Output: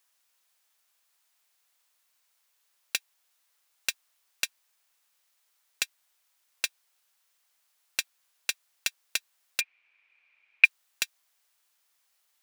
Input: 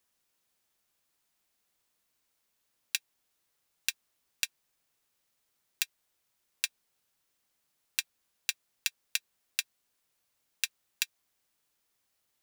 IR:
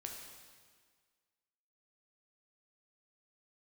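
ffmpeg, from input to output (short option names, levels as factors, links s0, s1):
-filter_complex "[0:a]highpass=760,aeval=exprs='0.596*sin(PI/2*3.98*val(0)/0.596)':c=same,asplit=3[s0][s1][s2];[s0]afade=t=out:st=9.6:d=0.02[s3];[s1]lowpass=f=2400:t=q:w=15,afade=t=in:st=9.6:d=0.02,afade=t=out:st=10.64:d=0.02[s4];[s2]afade=t=in:st=10.64:d=0.02[s5];[s3][s4][s5]amix=inputs=3:normalize=0,volume=0.299"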